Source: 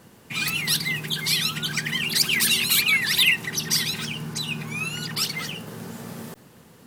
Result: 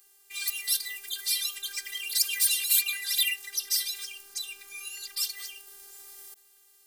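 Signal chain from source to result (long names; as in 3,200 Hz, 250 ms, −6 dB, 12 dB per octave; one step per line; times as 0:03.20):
phases set to zero 397 Hz
first-order pre-emphasis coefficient 0.97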